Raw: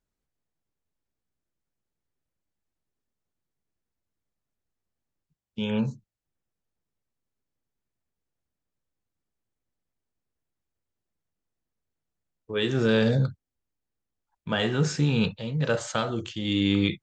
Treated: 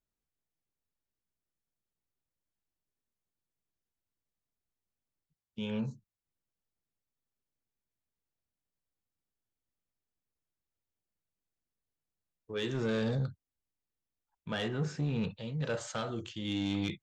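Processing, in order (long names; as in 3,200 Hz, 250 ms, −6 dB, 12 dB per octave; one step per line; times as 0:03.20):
0:14.68–0:15.30: high-shelf EQ 2,600 Hz −10 dB
soft clipping −18.5 dBFS, distortion −15 dB
level −7 dB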